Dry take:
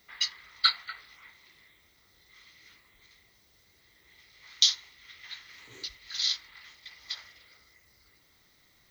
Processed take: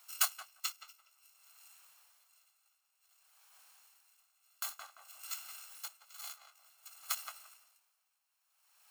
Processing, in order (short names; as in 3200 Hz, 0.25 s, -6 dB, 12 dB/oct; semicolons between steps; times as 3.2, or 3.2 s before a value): FFT order left unsorted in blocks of 128 samples; ladder high-pass 710 Hz, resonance 40%; on a send: tape echo 0.173 s, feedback 26%, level -4 dB, low-pass 1400 Hz; on the sum: dB-linear tremolo 0.55 Hz, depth 21 dB; gain +10 dB